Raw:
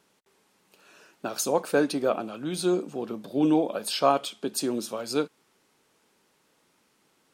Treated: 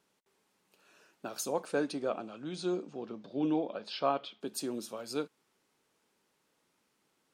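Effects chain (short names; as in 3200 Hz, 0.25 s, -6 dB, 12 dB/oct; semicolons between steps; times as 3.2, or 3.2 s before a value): 1.64–4.4 LPF 10000 Hz -> 4000 Hz 24 dB/oct; gain -8.5 dB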